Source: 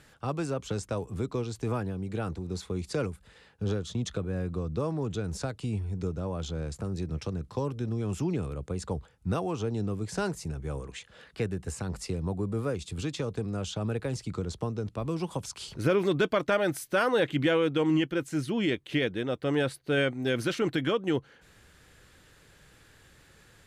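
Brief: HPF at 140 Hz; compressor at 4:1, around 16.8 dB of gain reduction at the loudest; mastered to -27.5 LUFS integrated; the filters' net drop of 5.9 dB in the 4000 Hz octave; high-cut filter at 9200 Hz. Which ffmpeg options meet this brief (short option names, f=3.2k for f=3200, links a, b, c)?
-af "highpass=140,lowpass=9.2k,equalizer=f=4k:t=o:g=-8,acompressor=threshold=-43dB:ratio=4,volume=18dB"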